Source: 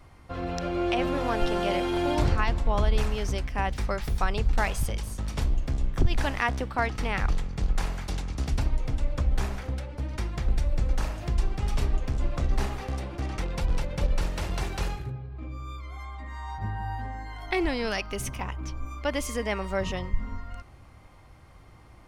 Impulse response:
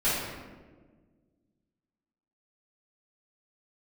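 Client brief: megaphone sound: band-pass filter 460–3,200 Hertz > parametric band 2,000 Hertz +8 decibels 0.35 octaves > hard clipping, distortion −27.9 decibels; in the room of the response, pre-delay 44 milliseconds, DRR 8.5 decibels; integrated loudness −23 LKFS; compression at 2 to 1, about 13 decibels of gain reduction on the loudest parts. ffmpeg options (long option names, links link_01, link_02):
-filter_complex "[0:a]acompressor=threshold=-42dB:ratio=2,asplit=2[link_01][link_02];[1:a]atrim=start_sample=2205,adelay=44[link_03];[link_02][link_03]afir=irnorm=-1:irlink=0,volume=-21dB[link_04];[link_01][link_04]amix=inputs=2:normalize=0,highpass=460,lowpass=3200,equalizer=frequency=2000:width_type=o:width=0.35:gain=8,asoftclip=type=hard:threshold=-24.5dB,volume=20dB"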